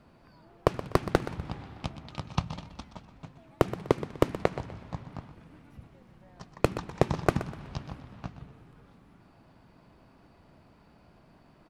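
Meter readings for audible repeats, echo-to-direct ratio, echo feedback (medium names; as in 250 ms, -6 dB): 3, -13.0 dB, 32%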